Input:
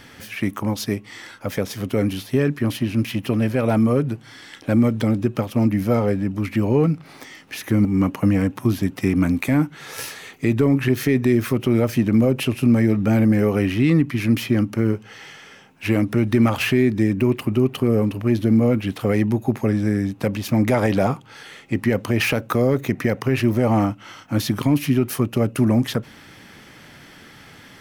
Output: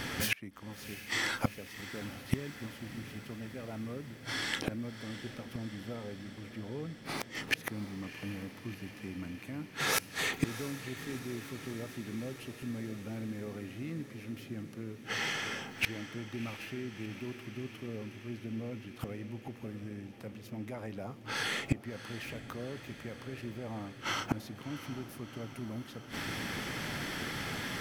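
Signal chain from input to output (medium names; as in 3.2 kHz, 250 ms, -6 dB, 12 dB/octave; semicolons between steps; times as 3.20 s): inverted gate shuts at -22 dBFS, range -30 dB; echo that smears into a reverb 694 ms, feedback 72%, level -12.5 dB; trim +6.5 dB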